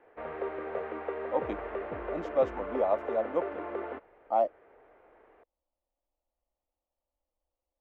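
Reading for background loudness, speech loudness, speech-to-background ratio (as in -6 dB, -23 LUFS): -37.5 LUFS, -31.5 LUFS, 6.0 dB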